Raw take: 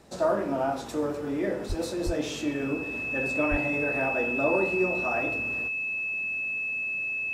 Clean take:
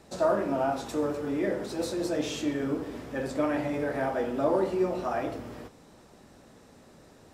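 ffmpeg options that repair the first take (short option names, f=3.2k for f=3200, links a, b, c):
-filter_complex "[0:a]bandreject=f=2.6k:w=30,asplit=3[a][b][c];[a]afade=t=out:st=1.68:d=0.02[d];[b]highpass=f=140:w=0.5412,highpass=f=140:w=1.3066,afade=t=in:st=1.68:d=0.02,afade=t=out:st=1.8:d=0.02[e];[c]afade=t=in:st=1.8:d=0.02[f];[d][e][f]amix=inputs=3:normalize=0,asplit=3[g][h][i];[g]afade=t=out:st=2.05:d=0.02[j];[h]highpass=f=140:w=0.5412,highpass=f=140:w=1.3066,afade=t=in:st=2.05:d=0.02,afade=t=out:st=2.17:d=0.02[k];[i]afade=t=in:st=2.17:d=0.02[l];[j][k][l]amix=inputs=3:normalize=0,asplit=3[m][n][o];[m]afade=t=out:st=3.5:d=0.02[p];[n]highpass=f=140:w=0.5412,highpass=f=140:w=1.3066,afade=t=in:st=3.5:d=0.02,afade=t=out:st=3.62:d=0.02[q];[o]afade=t=in:st=3.62:d=0.02[r];[p][q][r]amix=inputs=3:normalize=0"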